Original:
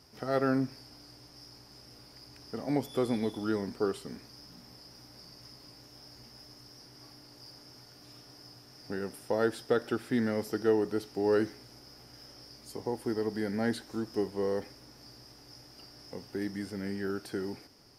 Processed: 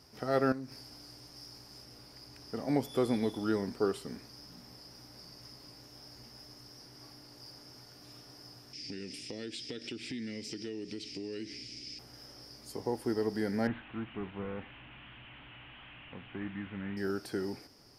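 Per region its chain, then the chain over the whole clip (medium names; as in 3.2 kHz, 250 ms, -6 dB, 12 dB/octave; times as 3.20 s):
0.52–1.84 s: treble shelf 5.7 kHz +6 dB + compression 3:1, threshold -41 dBFS + loudspeaker Doppler distortion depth 0.17 ms
8.73–11.99 s: FFT filter 150 Hz 0 dB, 290 Hz +5 dB, 970 Hz -19 dB, 1.5 kHz -11 dB, 2.3 kHz +14 dB, 7.9 kHz +7 dB, 12 kHz -17 dB + compression 5:1, threshold -38 dBFS
13.67–16.97 s: one-bit delta coder 16 kbps, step -43.5 dBFS + peaking EQ 440 Hz -11 dB 1.1 oct
whole clip: none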